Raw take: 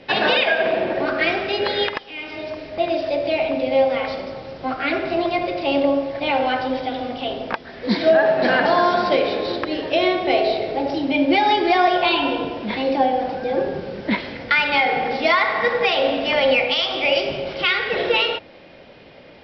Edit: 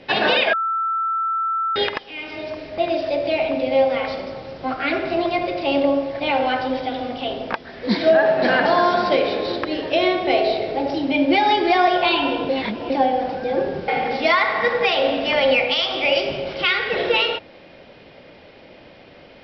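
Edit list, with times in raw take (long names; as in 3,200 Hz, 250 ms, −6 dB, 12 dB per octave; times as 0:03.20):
0:00.53–0:01.76: beep over 1,330 Hz −19 dBFS
0:12.49–0:12.90: reverse
0:13.88–0:14.88: remove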